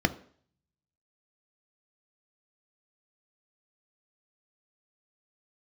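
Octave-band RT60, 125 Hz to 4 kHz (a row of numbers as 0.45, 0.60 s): 0.75, 0.55, 0.55, 0.50, 0.50, 0.55 s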